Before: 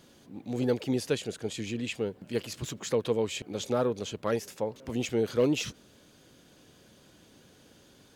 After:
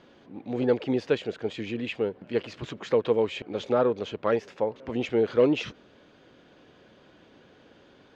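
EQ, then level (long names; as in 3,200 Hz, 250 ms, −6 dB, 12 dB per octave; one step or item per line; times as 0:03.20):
high-frequency loss of the air 160 metres
bass and treble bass −8 dB, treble −9 dB
+6.0 dB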